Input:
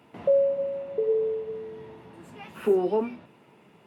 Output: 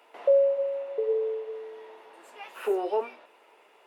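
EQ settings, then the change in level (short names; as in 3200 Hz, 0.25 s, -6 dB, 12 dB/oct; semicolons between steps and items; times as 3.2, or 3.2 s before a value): HPF 460 Hz 24 dB/oct; +1.5 dB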